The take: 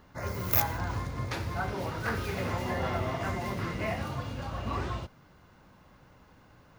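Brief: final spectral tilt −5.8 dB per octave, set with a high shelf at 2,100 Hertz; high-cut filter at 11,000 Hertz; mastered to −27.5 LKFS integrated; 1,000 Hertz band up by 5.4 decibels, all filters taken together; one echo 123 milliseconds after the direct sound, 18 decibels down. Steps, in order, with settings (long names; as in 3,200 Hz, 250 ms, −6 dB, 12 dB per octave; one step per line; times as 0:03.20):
low-pass filter 11,000 Hz
parametric band 1,000 Hz +8.5 dB
high-shelf EQ 2,100 Hz −8 dB
single-tap delay 123 ms −18 dB
level +4 dB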